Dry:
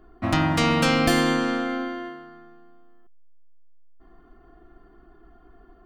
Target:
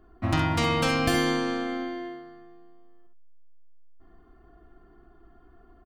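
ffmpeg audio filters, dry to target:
-filter_complex "[0:a]equalizer=f=94:t=o:w=0.85:g=8.5,asplit=2[a][b];[b]aecho=0:1:49|66:0.251|0.422[c];[a][c]amix=inputs=2:normalize=0,volume=-4.5dB"

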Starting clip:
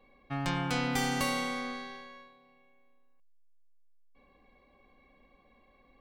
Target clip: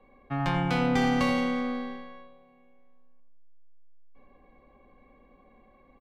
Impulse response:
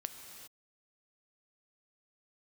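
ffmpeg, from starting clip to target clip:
-filter_complex "[0:a]highshelf=f=4.4k:g=-3.5,asplit=2[a][b];[b]adelay=85,lowpass=f=1.3k:p=1,volume=-4.5dB,asplit=2[c][d];[d]adelay=85,lowpass=f=1.3k:p=1,volume=0.53,asplit=2[e][f];[f]adelay=85,lowpass=f=1.3k:p=1,volume=0.53,asplit=2[g][h];[h]adelay=85,lowpass=f=1.3k:p=1,volume=0.53,asplit=2[i][j];[j]adelay=85,lowpass=f=1.3k:p=1,volume=0.53,asplit=2[k][l];[l]adelay=85,lowpass=f=1.3k:p=1,volume=0.53,asplit=2[m][n];[n]adelay=85,lowpass=f=1.3k:p=1,volume=0.53[o];[a][c][e][g][i][k][m][o]amix=inputs=8:normalize=0,acrossover=split=290|1700[p][q][r];[r]adynamicsmooth=sensitivity=5.5:basefreq=2.9k[s];[p][q][s]amix=inputs=3:normalize=0,volume=4.5dB"

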